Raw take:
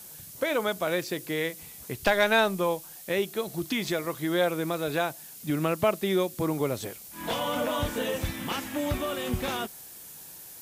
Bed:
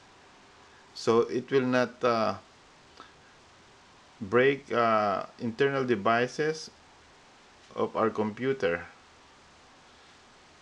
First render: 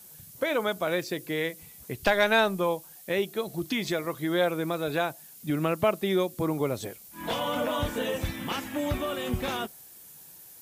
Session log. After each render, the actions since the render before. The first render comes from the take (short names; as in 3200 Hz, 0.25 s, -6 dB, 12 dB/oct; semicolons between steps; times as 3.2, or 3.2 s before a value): denoiser 6 dB, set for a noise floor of -46 dBFS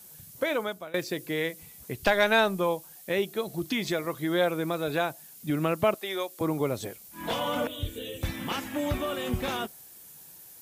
0.48–0.94 fade out linear, to -22 dB; 5.94–6.41 HPF 600 Hz; 7.67–8.23 EQ curve 120 Hz 0 dB, 180 Hz -15 dB, 390 Hz -2 dB, 890 Hz -27 dB, 1500 Hz -18 dB, 2200 Hz -10 dB, 3500 Hz 0 dB, 5100 Hz -13 dB, 7600 Hz -5 dB, 15000 Hz -1 dB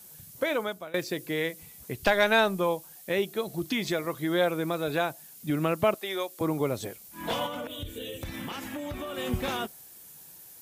7.46–9.18 compressor, threshold -32 dBFS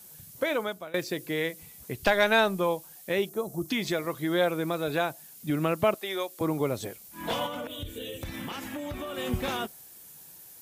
3.29–3.69 band shelf 2700 Hz -13 dB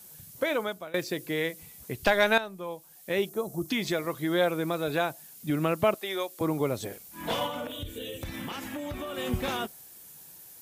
2.38–3.19 fade in quadratic, from -13.5 dB; 6.86–7.79 doubler 50 ms -8.5 dB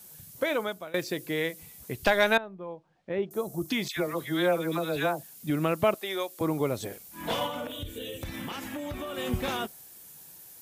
2.37–3.31 tape spacing loss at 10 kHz 43 dB; 3.88–5.23 dispersion lows, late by 86 ms, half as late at 1400 Hz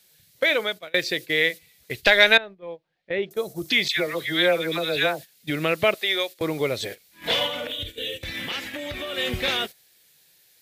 gate -38 dBFS, range -12 dB; graphic EQ 250/500/1000/2000/4000 Hz -3/+6/-5/+11/+12 dB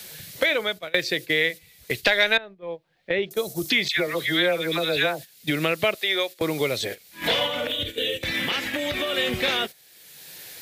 three-band squash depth 70%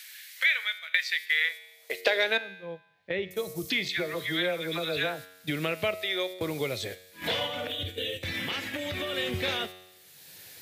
resonator 92 Hz, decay 0.99 s, harmonics all, mix 60%; high-pass sweep 1900 Hz -> 84 Hz, 1.23–3.07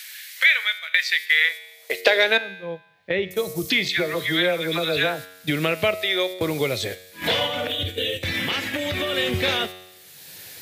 gain +7.5 dB; limiter -3 dBFS, peak gain reduction 2.5 dB